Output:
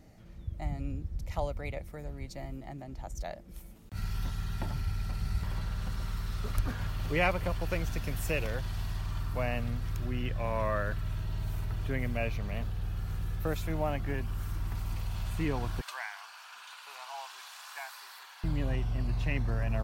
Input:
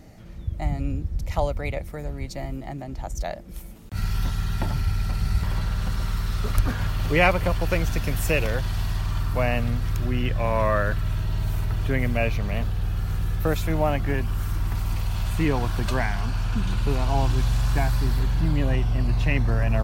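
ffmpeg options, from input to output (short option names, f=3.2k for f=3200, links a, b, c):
-filter_complex "[0:a]asettb=1/sr,asplit=3[a][b][c];[a]atrim=end=15.814[d];[b]atrim=start=15.81:end=18.44,asetpts=PTS-STARTPTS,afade=t=in:d=0.004:c=qsin,afade=t=out:st=2.626:d=0.004:c=qsin,highpass=f=880:w=0.5412,highpass=f=880:w=1.3066[e];[c]atrim=start=18.436[f];[d][e]acrossfade=d=0.004:c1=hsin:c2=qsin[g];[g][f]acrossfade=d=0.004:c1=qsin:c2=hsin,volume=-9dB"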